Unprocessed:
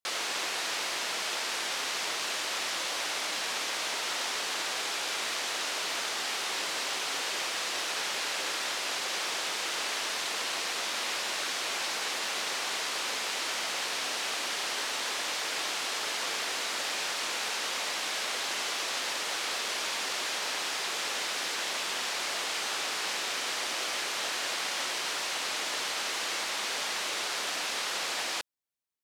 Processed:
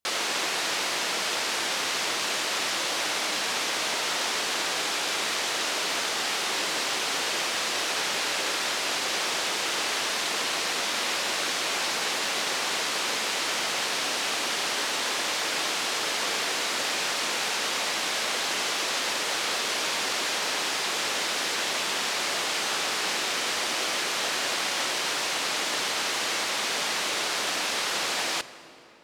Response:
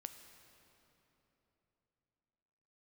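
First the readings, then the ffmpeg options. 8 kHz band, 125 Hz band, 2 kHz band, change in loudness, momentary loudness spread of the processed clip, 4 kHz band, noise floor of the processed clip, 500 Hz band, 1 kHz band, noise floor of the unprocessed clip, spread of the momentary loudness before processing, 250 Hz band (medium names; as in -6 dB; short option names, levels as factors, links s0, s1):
+4.5 dB, no reading, +4.5 dB, +4.5 dB, 0 LU, +4.5 dB, -29 dBFS, +6.5 dB, +5.0 dB, -34 dBFS, 0 LU, +8.5 dB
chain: -filter_complex "[0:a]asplit=2[s0][s1];[1:a]atrim=start_sample=2205,lowshelf=f=440:g=11.5[s2];[s1][s2]afir=irnorm=-1:irlink=0,volume=1.19[s3];[s0][s3]amix=inputs=2:normalize=0"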